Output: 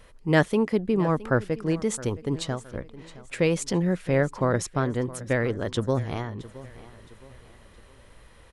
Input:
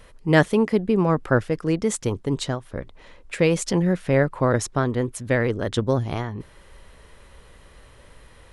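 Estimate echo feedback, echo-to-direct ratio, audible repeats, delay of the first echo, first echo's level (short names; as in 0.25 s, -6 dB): 40%, -17.5 dB, 3, 0.667 s, -18.0 dB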